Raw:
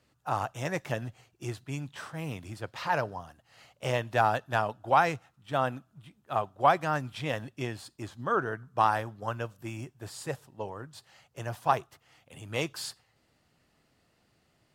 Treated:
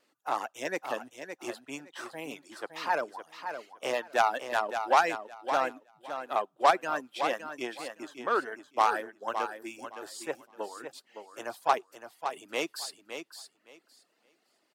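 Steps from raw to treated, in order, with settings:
harmonic generator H 3 −23 dB, 6 −18 dB, 8 −19 dB, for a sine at −9.5 dBFS
high-pass filter 270 Hz 24 dB per octave
in parallel at −9 dB: soft clipping −22.5 dBFS, distortion −9 dB
on the sum: reverb reduction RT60 1.2 s
pitch vibrato 0.75 Hz 7.8 cents
on a send: repeating echo 564 ms, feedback 18%, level −8.5 dB

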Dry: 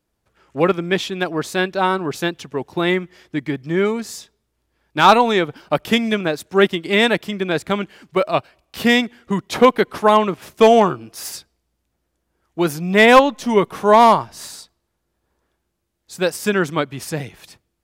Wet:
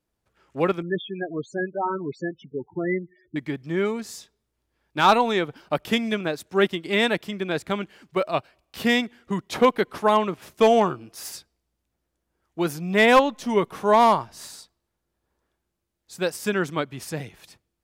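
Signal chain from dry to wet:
0:00.82–0:03.36: spectral peaks only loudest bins 8
level −6 dB

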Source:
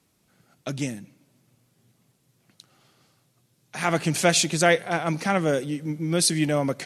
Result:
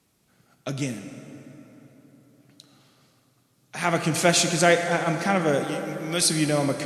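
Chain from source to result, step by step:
0:05.64–0:06.21: tilt shelving filter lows −7 dB, about 1,100 Hz
dense smooth reverb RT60 4.2 s, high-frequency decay 0.5×, DRR 6 dB

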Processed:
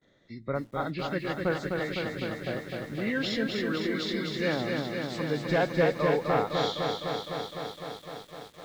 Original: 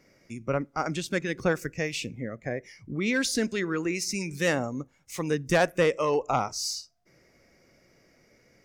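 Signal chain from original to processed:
hearing-aid frequency compression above 1,600 Hz 1.5 to 1
noise gate with hold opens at −53 dBFS
feedback echo at a low word length 254 ms, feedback 80%, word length 9 bits, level −4 dB
level −3.5 dB

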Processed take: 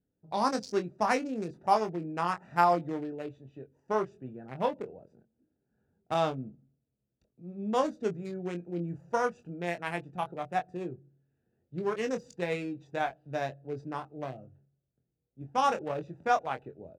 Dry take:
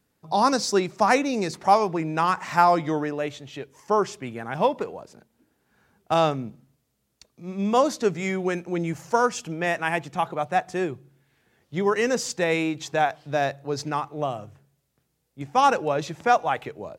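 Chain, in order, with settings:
adaptive Wiener filter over 41 samples
harmonic generator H 3 −25 dB, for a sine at −4.5 dBFS
double-tracking delay 23 ms −7 dB
level −6.5 dB

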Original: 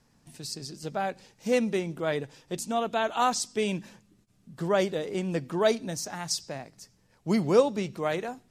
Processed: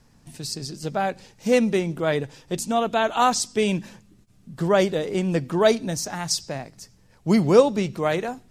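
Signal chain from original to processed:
low-shelf EQ 91 Hz +8.5 dB
level +5.5 dB

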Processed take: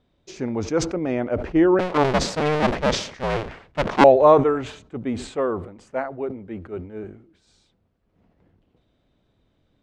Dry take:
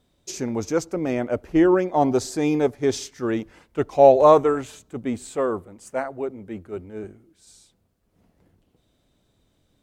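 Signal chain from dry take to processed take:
0:01.79–0:04.04: sub-harmonics by changed cycles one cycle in 2, inverted
low-pass filter 3,300 Hz 12 dB per octave
level that may fall only so fast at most 99 dB per second

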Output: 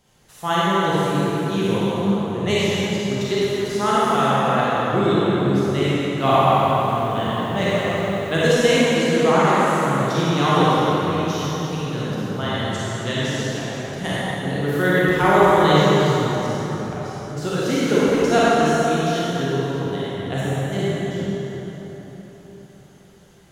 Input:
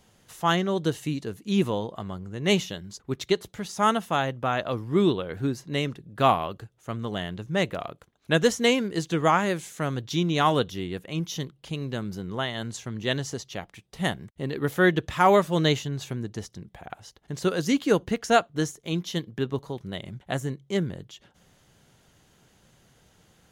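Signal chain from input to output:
convolution reverb RT60 4.3 s, pre-delay 27 ms, DRR −9.5 dB
0:06.13–0:08.52: feedback echo at a low word length 91 ms, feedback 80%, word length 7 bits, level −10 dB
level −3 dB

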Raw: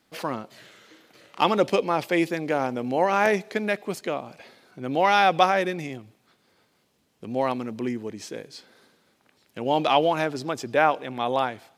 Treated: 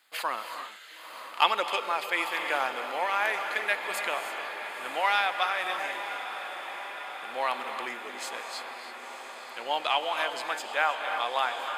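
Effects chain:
high-pass filter 1,100 Hz 12 dB per octave
reverb whose tail is shaped and stops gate 350 ms rising, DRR 7.5 dB
speech leveller within 5 dB 0.5 s
parametric band 5,700 Hz −15 dB 0.23 octaves
on a send: feedback delay with all-pass diffusion 973 ms, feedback 72%, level −10 dB

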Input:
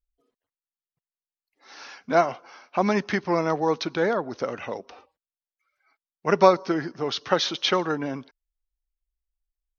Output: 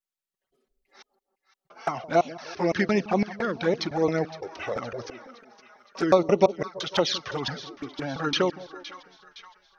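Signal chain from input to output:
slices reordered back to front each 170 ms, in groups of 5
notch filter 1,000 Hz, Q 11
in parallel at −1 dB: downward compressor 6 to 1, threshold −32 dBFS, peak gain reduction 19 dB
on the sum: echo with a time of its own for lows and highs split 860 Hz, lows 165 ms, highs 514 ms, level −14 dB
flanger swept by the level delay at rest 5.3 ms, full sweep at −16 dBFS

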